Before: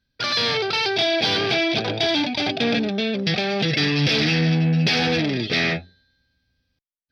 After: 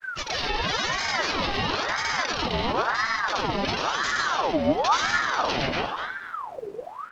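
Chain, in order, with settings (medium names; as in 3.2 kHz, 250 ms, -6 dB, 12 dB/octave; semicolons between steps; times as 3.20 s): peak limiter -19 dBFS, peak gain reduction 10.5 dB; added noise brown -41 dBFS; granulator, pitch spread up and down by 0 st; filtered feedback delay 242 ms, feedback 32%, low-pass 1.3 kHz, level -3 dB; on a send at -12 dB: reverberation RT60 1.1 s, pre-delay 7 ms; on the sum: ring modulator with a swept carrier 990 Hz, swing 60%, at 0.97 Hz; trim +3.5 dB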